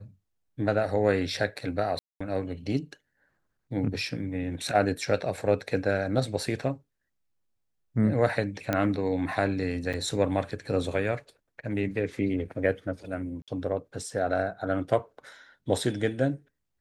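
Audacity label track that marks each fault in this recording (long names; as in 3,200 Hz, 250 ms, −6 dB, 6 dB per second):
1.990000	2.210000	drop-out 215 ms
8.730000	8.730000	click −12 dBFS
9.930000	9.940000	drop-out 6.7 ms
13.420000	13.480000	drop-out 57 ms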